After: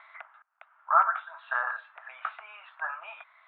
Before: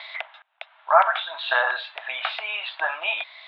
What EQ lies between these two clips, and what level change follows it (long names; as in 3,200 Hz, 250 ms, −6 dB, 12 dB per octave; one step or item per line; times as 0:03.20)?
resonant band-pass 1,300 Hz, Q 3.9
high-frequency loss of the air 450 metres
+1.5 dB